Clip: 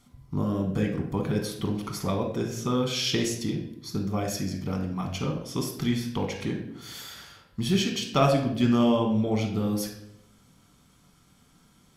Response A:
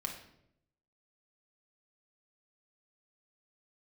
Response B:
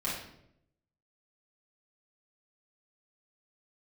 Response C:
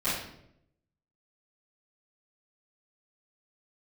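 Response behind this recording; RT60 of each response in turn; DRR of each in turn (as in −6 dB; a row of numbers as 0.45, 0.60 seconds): A; 0.75, 0.75, 0.75 seconds; 1.5, −7.5, −15.5 decibels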